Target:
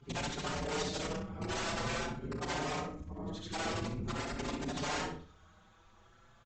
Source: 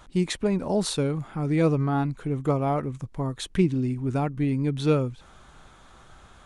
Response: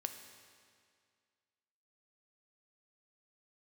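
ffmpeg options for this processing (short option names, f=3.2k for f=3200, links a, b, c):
-filter_complex "[0:a]afftfilt=real='re':imag='-im':win_size=8192:overlap=0.75,acontrast=39,aresample=16000,aeval=exprs='(mod(8.41*val(0)+1,2)-1)/8.41':c=same,aresample=44100,afreqshift=-13,afftfilt=real='hypot(re,im)*cos(2*PI*random(0))':imag='hypot(re,im)*sin(2*PI*random(1))':win_size=512:overlap=0.75,asplit=2[a][b];[b]adelay=36,volume=-11dB[c];[a][c]amix=inputs=2:normalize=0,asplit=2[d][e];[e]adelay=63,lowpass=f=4.3k:p=1,volume=-6dB,asplit=2[f][g];[g]adelay=63,lowpass=f=4.3k:p=1,volume=0.33,asplit=2[h][i];[i]adelay=63,lowpass=f=4.3k:p=1,volume=0.33,asplit=2[j][k];[k]adelay=63,lowpass=f=4.3k:p=1,volume=0.33[l];[d][f][h][j][l]amix=inputs=5:normalize=0,asplit=2[m][n];[n]adelay=5.4,afreqshift=0.46[o];[m][o]amix=inputs=2:normalize=1,volume=-4.5dB"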